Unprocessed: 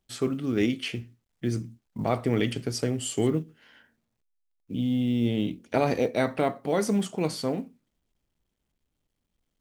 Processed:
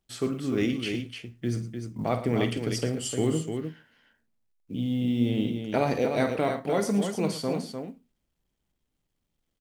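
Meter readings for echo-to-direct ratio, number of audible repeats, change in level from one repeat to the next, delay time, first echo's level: -5.0 dB, 3, no regular repeats, 50 ms, -11.5 dB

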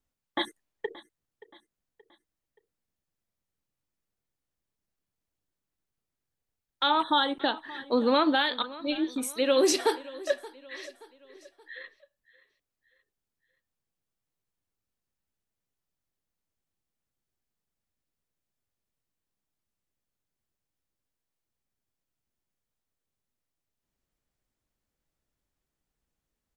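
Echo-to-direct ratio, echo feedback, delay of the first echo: -18.0 dB, 44%, 576 ms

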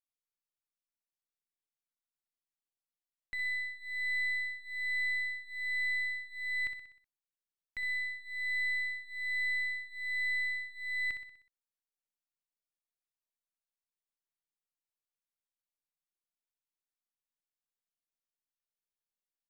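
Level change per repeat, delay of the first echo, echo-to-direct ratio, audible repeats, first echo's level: -5.5 dB, 62 ms, -7.0 dB, 5, -8.5 dB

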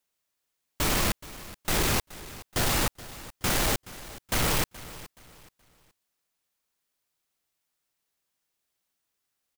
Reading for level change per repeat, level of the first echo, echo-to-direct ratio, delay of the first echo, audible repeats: -10.0 dB, -17.5 dB, -17.0 dB, 424 ms, 2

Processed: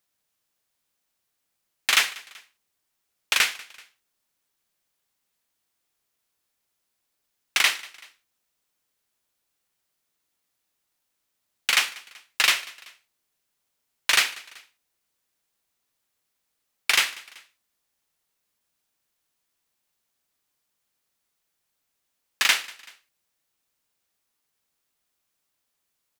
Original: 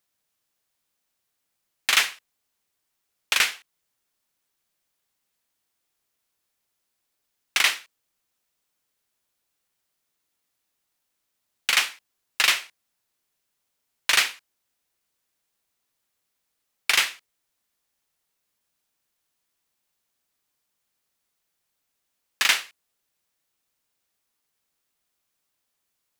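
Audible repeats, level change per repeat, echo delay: 2, -5.5 dB, 191 ms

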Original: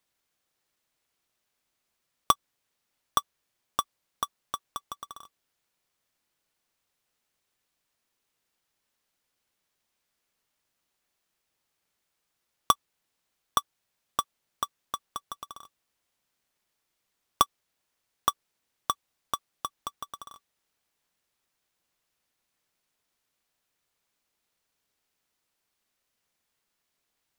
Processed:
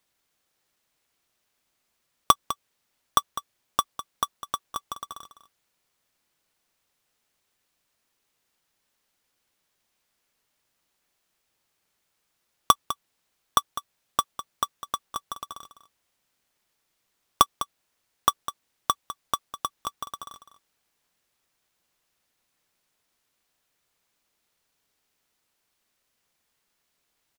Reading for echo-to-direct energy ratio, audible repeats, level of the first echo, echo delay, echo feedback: -12.5 dB, 1, -12.5 dB, 203 ms, no regular repeats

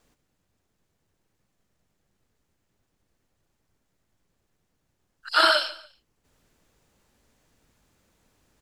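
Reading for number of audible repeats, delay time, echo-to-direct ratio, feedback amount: 2, 144 ms, -17.5 dB, 28%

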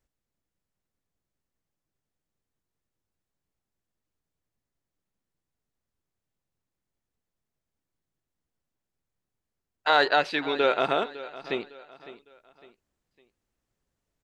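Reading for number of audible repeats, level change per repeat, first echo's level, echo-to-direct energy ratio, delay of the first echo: 3, -8.5 dB, -16.5 dB, -16.0 dB, 556 ms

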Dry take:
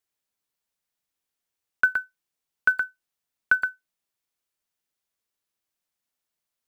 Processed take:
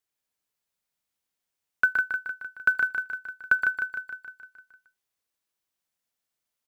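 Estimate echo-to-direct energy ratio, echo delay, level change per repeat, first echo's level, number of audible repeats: -3.0 dB, 153 ms, -4.5 dB, -5.0 dB, 7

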